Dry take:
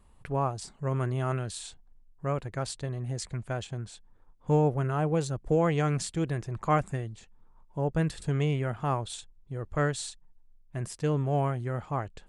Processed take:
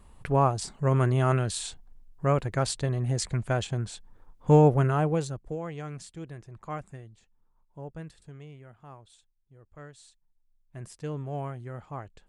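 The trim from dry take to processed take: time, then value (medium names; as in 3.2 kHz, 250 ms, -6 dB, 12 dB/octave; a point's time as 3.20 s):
4.81 s +6 dB
5.32 s -2.5 dB
5.59 s -11 dB
7.78 s -11 dB
8.45 s -19 dB
9.92 s -19 dB
10.81 s -7 dB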